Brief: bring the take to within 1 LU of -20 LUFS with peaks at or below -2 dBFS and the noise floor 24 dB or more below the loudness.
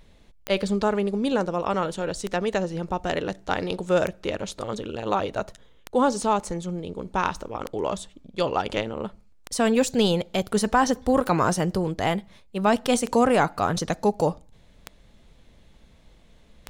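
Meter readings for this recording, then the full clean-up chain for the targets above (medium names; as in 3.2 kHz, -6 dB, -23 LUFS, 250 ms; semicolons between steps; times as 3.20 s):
clicks found 10; loudness -25.0 LUFS; peak level -9.0 dBFS; loudness target -20.0 LUFS
-> de-click; trim +5 dB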